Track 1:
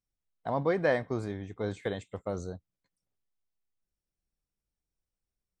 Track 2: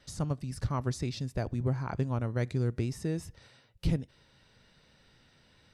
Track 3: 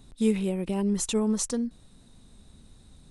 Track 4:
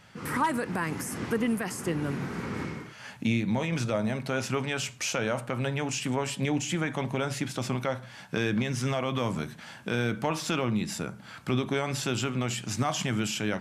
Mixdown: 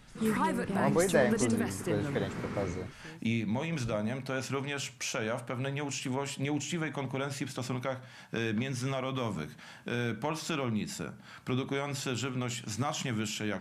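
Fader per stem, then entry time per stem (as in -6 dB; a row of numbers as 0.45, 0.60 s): 0.0, -17.5, -7.0, -4.5 dB; 0.30, 0.00, 0.00, 0.00 s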